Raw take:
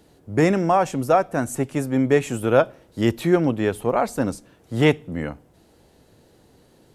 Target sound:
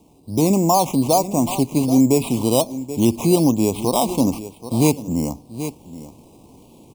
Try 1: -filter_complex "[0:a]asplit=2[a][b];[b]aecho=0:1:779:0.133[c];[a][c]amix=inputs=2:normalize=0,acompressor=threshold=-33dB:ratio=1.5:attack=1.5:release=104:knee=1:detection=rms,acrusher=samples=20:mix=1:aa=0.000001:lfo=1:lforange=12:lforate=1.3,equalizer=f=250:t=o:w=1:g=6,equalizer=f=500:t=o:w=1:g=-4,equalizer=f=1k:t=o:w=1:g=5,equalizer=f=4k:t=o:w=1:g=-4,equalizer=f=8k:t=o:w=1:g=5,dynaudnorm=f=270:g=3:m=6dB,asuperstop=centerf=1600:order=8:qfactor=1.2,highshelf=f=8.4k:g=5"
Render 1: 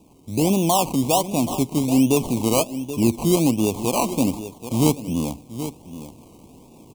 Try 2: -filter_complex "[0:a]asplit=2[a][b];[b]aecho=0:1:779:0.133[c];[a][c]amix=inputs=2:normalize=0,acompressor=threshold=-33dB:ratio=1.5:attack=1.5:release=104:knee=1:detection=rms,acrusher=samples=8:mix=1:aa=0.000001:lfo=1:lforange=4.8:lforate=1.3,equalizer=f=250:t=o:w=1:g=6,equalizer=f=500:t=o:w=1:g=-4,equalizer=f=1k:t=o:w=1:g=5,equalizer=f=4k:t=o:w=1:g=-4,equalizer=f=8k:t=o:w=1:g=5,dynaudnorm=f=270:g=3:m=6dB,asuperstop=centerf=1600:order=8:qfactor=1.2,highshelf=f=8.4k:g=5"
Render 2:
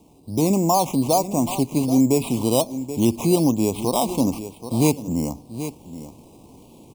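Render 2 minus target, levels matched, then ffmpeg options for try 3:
compressor: peak gain reduction +3 dB
-filter_complex "[0:a]asplit=2[a][b];[b]aecho=0:1:779:0.133[c];[a][c]amix=inputs=2:normalize=0,acompressor=threshold=-24dB:ratio=1.5:attack=1.5:release=104:knee=1:detection=rms,acrusher=samples=8:mix=1:aa=0.000001:lfo=1:lforange=4.8:lforate=1.3,equalizer=f=250:t=o:w=1:g=6,equalizer=f=500:t=o:w=1:g=-4,equalizer=f=1k:t=o:w=1:g=5,equalizer=f=4k:t=o:w=1:g=-4,equalizer=f=8k:t=o:w=1:g=5,dynaudnorm=f=270:g=3:m=6dB,asuperstop=centerf=1600:order=8:qfactor=1.2,highshelf=f=8.4k:g=5"

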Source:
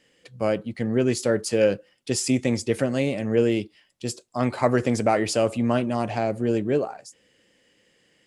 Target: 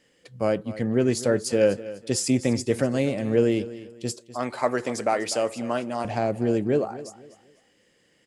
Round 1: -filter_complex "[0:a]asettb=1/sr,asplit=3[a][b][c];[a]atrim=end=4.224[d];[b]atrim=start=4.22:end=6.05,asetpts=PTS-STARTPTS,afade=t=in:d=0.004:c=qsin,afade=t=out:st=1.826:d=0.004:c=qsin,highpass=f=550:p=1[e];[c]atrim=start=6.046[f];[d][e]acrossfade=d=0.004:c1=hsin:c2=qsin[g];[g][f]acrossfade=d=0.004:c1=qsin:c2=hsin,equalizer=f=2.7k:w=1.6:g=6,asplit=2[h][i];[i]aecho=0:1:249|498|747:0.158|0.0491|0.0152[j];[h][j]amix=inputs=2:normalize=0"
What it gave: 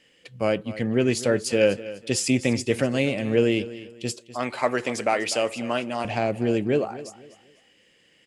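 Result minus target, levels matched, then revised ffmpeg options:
2000 Hz band +4.5 dB
-filter_complex "[0:a]asettb=1/sr,asplit=3[a][b][c];[a]atrim=end=4.224[d];[b]atrim=start=4.22:end=6.05,asetpts=PTS-STARTPTS,afade=t=in:d=0.004:c=qsin,afade=t=out:st=1.826:d=0.004:c=qsin,highpass=f=550:p=1[e];[c]atrim=start=6.046[f];[d][e]acrossfade=d=0.004:c1=hsin:c2=qsin[g];[g][f]acrossfade=d=0.004:c1=qsin:c2=hsin,equalizer=f=2.7k:w=1.6:g=-3.5,asplit=2[h][i];[i]aecho=0:1:249|498|747:0.158|0.0491|0.0152[j];[h][j]amix=inputs=2:normalize=0"

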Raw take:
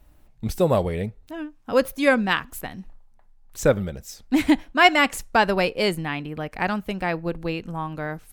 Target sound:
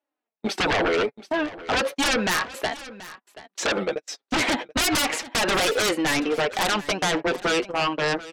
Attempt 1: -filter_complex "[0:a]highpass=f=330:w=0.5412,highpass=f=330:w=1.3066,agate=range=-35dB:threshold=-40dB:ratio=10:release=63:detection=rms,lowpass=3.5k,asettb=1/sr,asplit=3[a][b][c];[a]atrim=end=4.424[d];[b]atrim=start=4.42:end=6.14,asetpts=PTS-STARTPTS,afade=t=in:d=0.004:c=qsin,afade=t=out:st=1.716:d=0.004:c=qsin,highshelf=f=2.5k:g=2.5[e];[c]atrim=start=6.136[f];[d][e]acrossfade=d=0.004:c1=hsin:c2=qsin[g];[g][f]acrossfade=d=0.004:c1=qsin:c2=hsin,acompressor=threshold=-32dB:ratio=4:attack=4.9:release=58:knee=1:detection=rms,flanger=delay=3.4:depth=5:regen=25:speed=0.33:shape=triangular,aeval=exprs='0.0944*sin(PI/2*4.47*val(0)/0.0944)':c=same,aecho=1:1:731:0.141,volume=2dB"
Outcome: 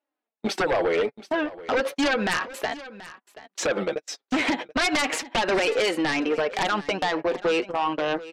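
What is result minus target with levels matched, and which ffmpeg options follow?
compressor: peak gain reduction +6.5 dB
-filter_complex "[0:a]highpass=f=330:w=0.5412,highpass=f=330:w=1.3066,agate=range=-35dB:threshold=-40dB:ratio=10:release=63:detection=rms,lowpass=3.5k,asettb=1/sr,asplit=3[a][b][c];[a]atrim=end=4.424[d];[b]atrim=start=4.42:end=6.14,asetpts=PTS-STARTPTS,afade=t=in:d=0.004:c=qsin,afade=t=out:st=1.716:d=0.004:c=qsin,highshelf=f=2.5k:g=2.5[e];[c]atrim=start=6.136[f];[d][e]acrossfade=d=0.004:c1=hsin:c2=qsin[g];[g][f]acrossfade=d=0.004:c1=qsin:c2=hsin,acompressor=threshold=-23.5dB:ratio=4:attack=4.9:release=58:knee=1:detection=rms,flanger=delay=3.4:depth=5:regen=25:speed=0.33:shape=triangular,aeval=exprs='0.0944*sin(PI/2*4.47*val(0)/0.0944)':c=same,aecho=1:1:731:0.141,volume=2dB"

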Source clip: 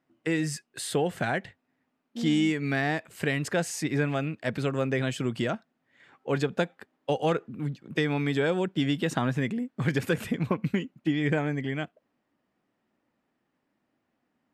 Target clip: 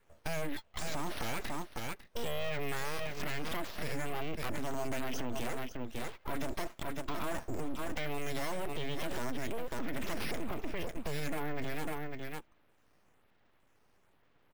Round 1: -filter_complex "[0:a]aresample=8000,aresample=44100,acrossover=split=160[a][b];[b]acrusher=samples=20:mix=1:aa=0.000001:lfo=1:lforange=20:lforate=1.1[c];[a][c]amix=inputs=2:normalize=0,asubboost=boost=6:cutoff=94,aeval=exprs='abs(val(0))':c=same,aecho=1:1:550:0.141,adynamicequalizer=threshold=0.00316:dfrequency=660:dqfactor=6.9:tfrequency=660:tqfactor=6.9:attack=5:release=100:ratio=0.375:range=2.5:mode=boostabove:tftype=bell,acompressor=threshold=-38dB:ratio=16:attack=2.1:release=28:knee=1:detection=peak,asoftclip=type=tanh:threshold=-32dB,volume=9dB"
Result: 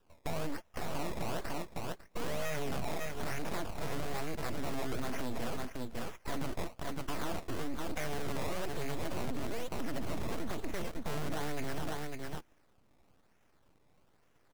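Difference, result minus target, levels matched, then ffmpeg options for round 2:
decimation with a swept rate: distortion +13 dB
-filter_complex "[0:a]aresample=8000,aresample=44100,acrossover=split=160[a][b];[b]acrusher=samples=4:mix=1:aa=0.000001:lfo=1:lforange=4:lforate=1.1[c];[a][c]amix=inputs=2:normalize=0,asubboost=boost=6:cutoff=94,aeval=exprs='abs(val(0))':c=same,aecho=1:1:550:0.141,adynamicequalizer=threshold=0.00316:dfrequency=660:dqfactor=6.9:tfrequency=660:tqfactor=6.9:attack=5:release=100:ratio=0.375:range=2.5:mode=boostabove:tftype=bell,acompressor=threshold=-38dB:ratio=16:attack=2.1:release=28:knee=1:detection=peak,asoftclip=type=tanh:threshold=-32dB,volume=9dB"

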